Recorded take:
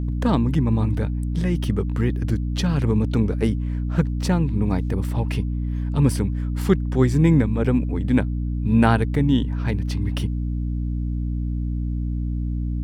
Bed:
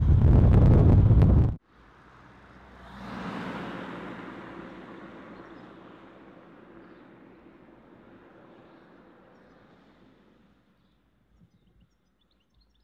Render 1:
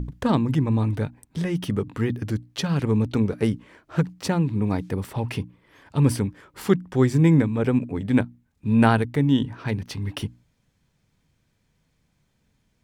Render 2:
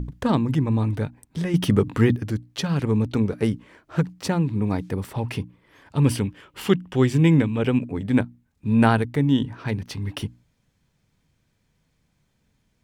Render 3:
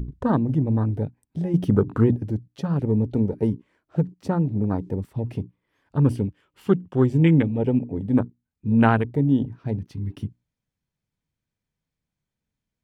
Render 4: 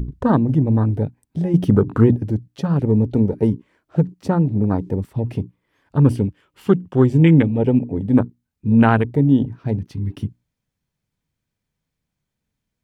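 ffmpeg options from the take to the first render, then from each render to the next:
-af "bandreject=f=60:t=h:w=6,bandreject=f=120:t=h:w=6,bandreject=f=180:t=h:w=6,bandreject=f=240:t=h:w=6,bandreject=f=300:t=h:w=6"
-filter_complex "[0:a]asettb=1/sr,asplit=3[s0][s1][s2];[s0]atrim=end=6.054[s3];[s1]atrim=start=6.05:end=7.82,asetpts=PTS-STARTPTS,afade=t=in:d=0.004:c=qsin,afade=t=out:st=1.766:d=0.004:c=qsin,equalizer=f=2900:t=o:w=0.47:g=11.5[s4];[s2]atrim=start=7.816[s5];[s3][s4]acrossfade=d=0.004:c1=hsin:c2=qsin[s6];[s6][s5]acrossfade=d=0.004:c1=qsin:c2=hsin,asplit=3[s7][s8][s9];[s7]atrim=end=1.542[s10];[s8]atrim=start=1.538:end=2.162,asetpts=PTS-STARTPTS,volume=2.11[s11];[s9]atrim=start=2.158[s12];[s10][s11]acrossfade=d=0.004:c1=hsin:c2=hsin[s13];[s13][s12]acrossfade=d=0.004:c1=hsin:c2=hsin"
-af "afwtdn=0.0355"
-af "volume=1.78,alimiter=limit=0.708:level=0:latency=1"

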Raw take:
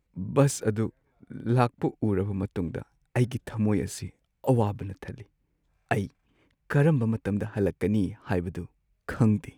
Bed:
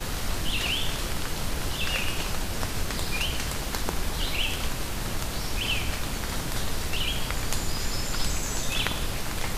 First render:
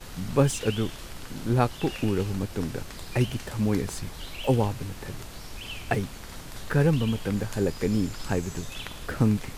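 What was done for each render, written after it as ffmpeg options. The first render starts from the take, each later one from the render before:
-filter_complex "[1:a]volume=0.299[s0];[0:a][s0]amix=inputs=2:normalize=0"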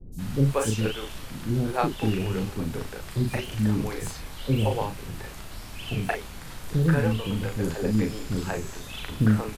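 -filter_complex "[0:a]asplit=2[s0][s1];[s1]adelay=37,volume=0.562[s2];[s0][s2]amix=inputs=2:normalize=0,acrossover=split=400|5900[s3][s4][s5];[s5]adelay=120[s6];[s4]adelay=180[s7];[s3][s7][s6]amix=inputs=3:normalize=0"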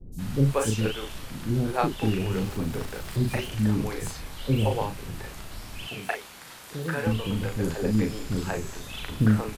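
-filter_complex "[0:a]asettb=1/sr,asplit=3[s0][s1][s2];[s0]atrim=end=2.314[s3];[s1]atrim=start=2.31:end=3.48,asetpts=PTS-STARTPTS,afade=t=in:d=0.004:c=qsin,afade=t=out:st=1.166:d=0.004:c=qsin,aeval=exprs='val(0)+0.5*0.00794*sgn(val(0))':c=same[s4];[s2]atrim=start=3.476[s5];[s3][s4]acrossfade=d=0.004:c1=hsin:c2=qsin[s6];[s6][s5]acrossfade=d=0.004:c1=qsin:c2=hsin,asettb=1/sr,asplit=3[s7][s8][s9];[s7]atrim=end=5.874[s10];[s8]atrim=start=5.87:end=7.07,asetpts=PTS-STARTPTS,afade=t=in:d=0.004:c=qsin,afade=t=out:st=1.196:d=0.004:c=qsin,highpass=f=600:p=1[s11];[s9]atrim=start=7.066[s12];[s10][s11]acrossfade=d=0.004:c1=hsin:c2=qsin[s13];[s13][s12]acrossfade=d=0.004:c1=qsin:c2=hsin"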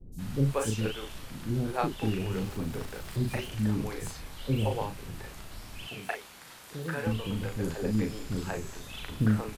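-af "volume=0.596"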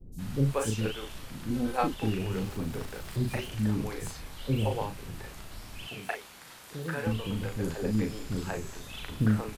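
-filter_complex "[0:a]asettb=1/sr,asplit=3[s0][s1][s2];[s0]atrim=end=1.504[s3];[s1]atrim=start=1.5:end=1.94,asetpts=PTS-STARTPTS,afade=t=in:d=0.004:c=qsin,afade=t=out:st=0.436:d=0.004:c=qsin,aecho=1:1:3.9:0.65,atrim=end_sample=19404[s4];[s2]atrim=start=1.936[s5];[s3][s4]acrossfade=d=0.004:c1=hsin:c2=qsin[s6];[s6][s5]acrossfade=d=0.004:c1=qsin:c2=hsin"

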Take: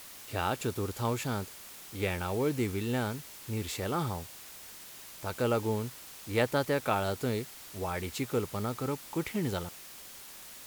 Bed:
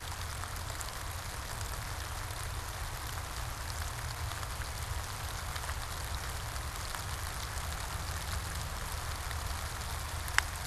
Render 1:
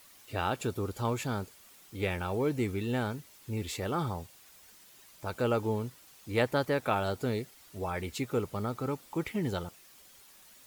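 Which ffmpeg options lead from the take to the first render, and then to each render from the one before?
-af "afftdn=nr=10:nf=-48"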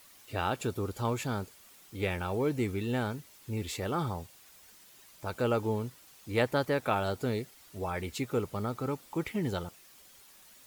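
-af anull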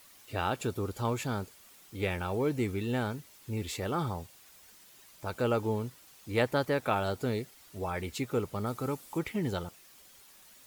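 -filter_complex "[0:a]asettb=1/sr,asplit=3[s0][s1][s2];[s0]atrim=end=8.664[s3];[s1]atrim=start=8.66:end=9.19,asetpts=PTS-STARTPTS,afade=t=in:d=0.004:c=qsin,afade=t=out:st=0.526:d=0.004:c=qsin,equalizer=f=11000:t=o:w=1.4:g=6.5[s4];[s2]atrim=start=9.186[s5];[s3][s4]acrossfade=d=0.004:c1=hsin:c2=qsin[s6];[s6][s5]acrossfade=d=0.004:c1=qsin:c2=hsin"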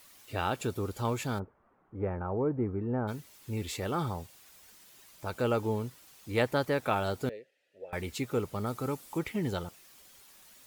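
-filter_complex "[0:a]asplit=3[s0][s1][s2];[s0]afade=t=out:st=1.38:d=0.02[s3];[s1]lowpass=f=1300:w=0.5412,lowpass=f=1300:w=1.3066,afade=t=in:st=1.38:d=0.02,afade=t=out:st=3.07:d=0.02[s4];[s2]afade=t=in:st=3.07:d=0.02[s5];[s3][s4][s5]amix=inputs=3:normalize=0,asettb=1/sr,asplit=3[s6][s7][s8];[s6]atrim=end=7.294[s9];[s7]atrim=start=7.29:end=7.93,asetpts=PTS-STARTPTS,afade=t=in:d=0.004:c=qsin,afade=t=out:st=0.636:d=0.004:c=qsin,asplit=3[s10][s11][s12];[s10]bandpass=f=530:t=q:w=8,volume=1[s13];[s11]bandpass=f=1840:t=q:w=8,volume=0.501[s14];[s12]bandpass=f=2480:t=q:w=8,volume=0.355[s15];[s13][s14][s15]amix=inputs=3:normalize=0[s16];[s8]atrim=start=7.926[s17];[s9][s16]acrossfade=d=0.004:c1=hsin:c2=qsin[s18];[s18][s17]acrossfade=d=0.004:c1=qsin:c2=hsin"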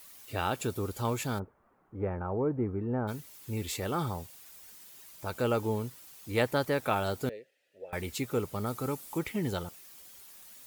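-af "highshelf=f=8500:g=7.5"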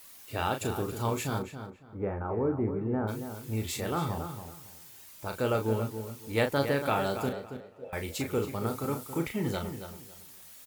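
-filter_complex "[0:a]asplit=2[s0][s1];[s1]adelay=36,volume=0.473[s2];[s0][s2]amix=inputs=2:normalize=0,asplit=2[s3][s4];[s4]adelay=277,lowpass=f=3300:p=1,volume=0.355,asplit=2[s5][s6];[s6]adelay=277,lowpass=f=3300:p=1,volume=0.24,asplit=2[s7][s8];[s8]adelay=277,lowpass=f=3300:p=1,volume=0.24[s9];[s3][s5][s7][s9]amix=inputs=4:normalize=0"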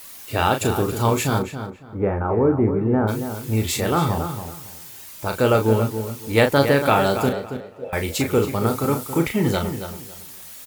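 -af "volume=3.55,alimiter=limit=0.708:level=0:latency=1"

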